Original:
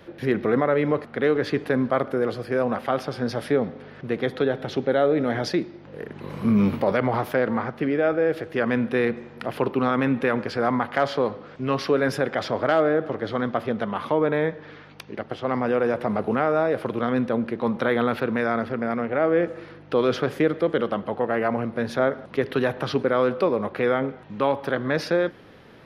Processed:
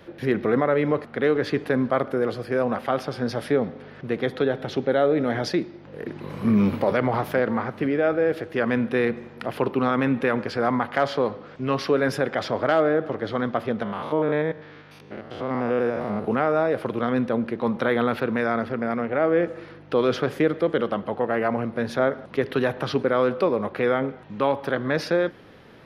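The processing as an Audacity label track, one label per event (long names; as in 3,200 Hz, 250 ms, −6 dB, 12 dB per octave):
5.590000	6.450000	delay throw 470 ms, feedback 65%, level −4.5 dB
13.830000	16.250000	spectrum averaged block by block every 100 ms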